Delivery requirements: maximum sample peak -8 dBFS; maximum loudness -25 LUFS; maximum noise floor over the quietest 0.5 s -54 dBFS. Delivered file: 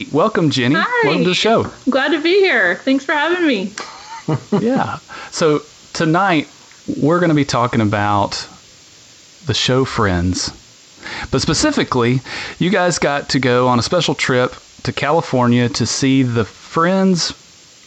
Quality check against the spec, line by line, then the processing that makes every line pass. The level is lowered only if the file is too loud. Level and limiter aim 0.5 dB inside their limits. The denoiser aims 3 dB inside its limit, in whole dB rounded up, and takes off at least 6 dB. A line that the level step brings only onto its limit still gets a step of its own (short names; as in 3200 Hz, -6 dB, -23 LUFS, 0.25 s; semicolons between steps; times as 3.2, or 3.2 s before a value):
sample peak -5.0 dBFS: fail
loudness -16.0 LUFS: fail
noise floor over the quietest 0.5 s -44 dBFS: fail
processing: denoiser 6 dB, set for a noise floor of -44 dBFS; gain -9.5 dB